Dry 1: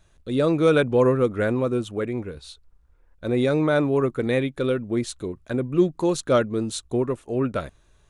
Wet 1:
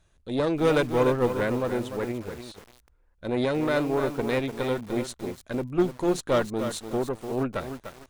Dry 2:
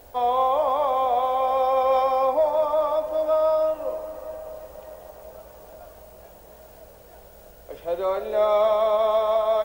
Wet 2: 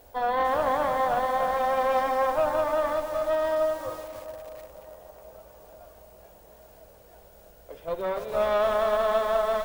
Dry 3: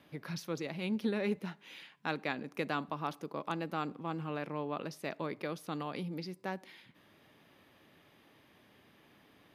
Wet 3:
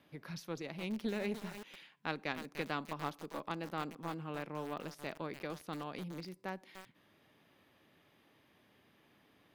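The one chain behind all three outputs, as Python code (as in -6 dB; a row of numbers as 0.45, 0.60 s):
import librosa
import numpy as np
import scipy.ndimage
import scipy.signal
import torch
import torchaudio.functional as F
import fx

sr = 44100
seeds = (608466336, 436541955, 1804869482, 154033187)

y = fx.cheby_harmonics(x, sr, harmonics=(2, 3, 6), levels_db=(-20, -31, -20), full_scale_db=-7.5)
y = fx.echo_crushed(y, sr, ms=297, feedback_pct=35, bits=6, wet_db=-8)
y = y * librosa.db_to_amplitude(-4.0)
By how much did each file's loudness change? -4.0, -3.5, -3.5 LU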